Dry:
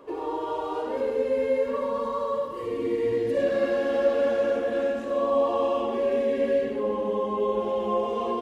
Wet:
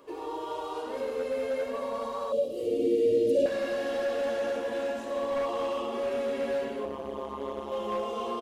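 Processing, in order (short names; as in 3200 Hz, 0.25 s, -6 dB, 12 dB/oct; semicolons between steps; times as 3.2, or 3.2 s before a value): high shelf 2800 Hz +11.5 dB; de-hum 101.9 Hz, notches 37; frequency-shifting echo 0.419 s, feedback 60%, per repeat +140 Hz, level -16 dB; hard clip -19.5 dBFS, distortion -18 dB; 2.32–3.46 EQ curve 120 Hz 0 dB, 290 Hz +8 dB, 600 Hz +7 dB, 930 Hz -27 dB, 1700 Hz -19 dB, 2800 Hz 0 dB; 6.85–7.72 AM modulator 140 Hz, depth 95%; gain -6 dB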